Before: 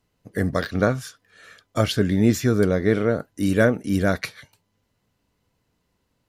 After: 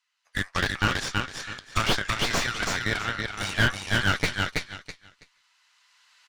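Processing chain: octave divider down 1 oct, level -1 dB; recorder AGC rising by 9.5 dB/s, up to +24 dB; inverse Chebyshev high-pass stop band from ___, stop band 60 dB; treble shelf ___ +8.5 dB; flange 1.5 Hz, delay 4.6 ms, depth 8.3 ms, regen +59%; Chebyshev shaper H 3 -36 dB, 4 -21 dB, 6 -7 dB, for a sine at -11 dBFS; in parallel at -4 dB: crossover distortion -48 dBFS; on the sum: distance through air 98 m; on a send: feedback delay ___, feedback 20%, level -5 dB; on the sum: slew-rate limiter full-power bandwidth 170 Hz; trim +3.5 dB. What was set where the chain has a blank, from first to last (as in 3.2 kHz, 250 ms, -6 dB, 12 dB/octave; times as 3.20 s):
340 Hz, 3.3 kHz, 327 ms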